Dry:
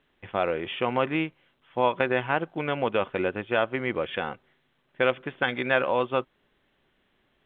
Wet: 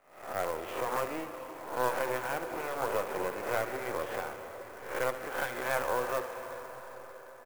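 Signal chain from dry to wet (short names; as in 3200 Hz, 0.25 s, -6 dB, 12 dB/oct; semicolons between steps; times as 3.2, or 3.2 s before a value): spectral swells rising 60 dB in 0.57 s; HPF 120 Hz 12 dB/oct; half-wave rectifier; three-band isolator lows -13 dB, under 340 Hz, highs -14 dB, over 2000 Hz; echo 71 ms -12.5 dB; on a send at -8 dB: reverb RT60 5.7 s, pre-delay 0.134 s; on the sum: clock jitter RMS 0.031 ms; gain -1.5 dB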